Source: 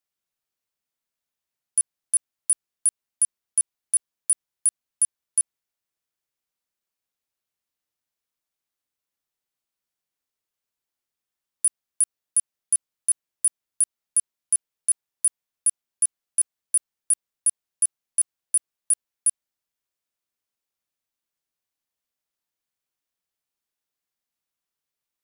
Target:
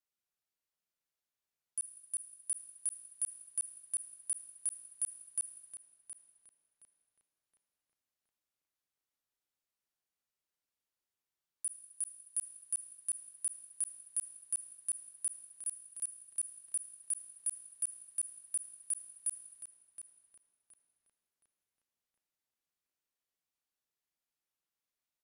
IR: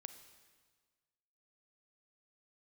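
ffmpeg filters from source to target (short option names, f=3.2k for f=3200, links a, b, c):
-filter_complex "[0:a]alimiter=limit=-23.5dB:level=0:latency=1,asplit=2[a][b];[b]adelay=720,lowpass=f=3.8k:p=1,volume=-4.5dB,asplit=2[c][d];[d]adelay=720,lowpass=f=3.8k:p=1,volume=0.47,asplit=2[e][f];[f]adelay=720,lowpass=f=3.8k:p=1,volume=0.47,asplit=2[g][h];[h]adelay=720,lowpass=f=3.8k:p=1,volume=0.47,asplit=2[i][j];[j]adelay=720,lowpass=f=3.8k:p=1,volume=0.47,asplit=2[k][l];[l]adelay=720,lowpass=f=3.8k:p=1,volume=0.47[m];[a][c][e][g][i][k][m]amix=inputs=7:normalize=0[n];[1:a]atrim=start_sample=2205,afade=t=out:st=0.29:d=0.01,atrim=end_sample=13230,asetrate=30870,aresample=44100[o];[n][o]afir=irnorm=-1:irlink=0,volume=-2.5dB"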